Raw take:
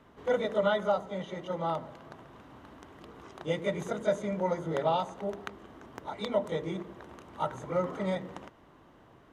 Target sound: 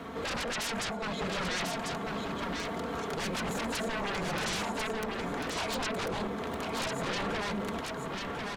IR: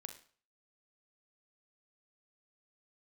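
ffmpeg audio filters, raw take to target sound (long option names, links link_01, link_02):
-filter_complex "[0:a]highpass=frequency=49:width=0.5412,highpass=frequency=49:width=1.3066,aecho=1:1:4.8:0.56,acompressor=threshold=-51dB:ratio=1.5,aeval=exprs='0.0708*sin(PI/2*10*val(0)/0.0708)':channel_layout=same,asplit=2[link_01][link_02];[link_02]aecho=0:1:1136:0.631[link_03];[link_01][link_03]amix=inputs=2:normalize=0,asetrate=48000,aresample=44100,volume=-8dB"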